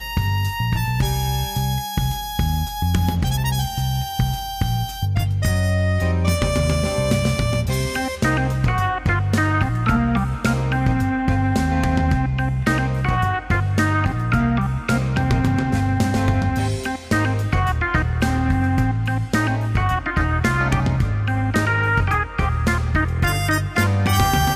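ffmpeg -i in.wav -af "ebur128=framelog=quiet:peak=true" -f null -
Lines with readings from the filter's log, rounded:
Integrated loudness:
  I:         -20.4 LUFS
  Threshold: -30.4 LUFS
Loudness range:
  LRA:         2.1 LU
  Threshold: -40.4 LUFS
  LRA low:   -21.9 LUFS
  LRA high:  -19.8 LUFS
True peak:
  Peak:       -4.8 dBFS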